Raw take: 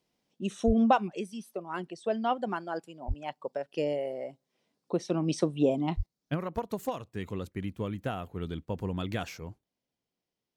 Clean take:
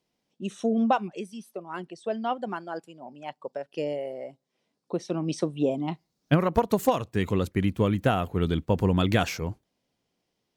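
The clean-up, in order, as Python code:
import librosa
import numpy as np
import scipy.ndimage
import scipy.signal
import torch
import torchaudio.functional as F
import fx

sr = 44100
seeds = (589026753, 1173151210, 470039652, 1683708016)

y = fx.fix_deplosive(x, sr, at_s=(0.66, 3.07, 5.96))
y = fx.fix_level(y, sr, at_s=6.06, step_db=10.5)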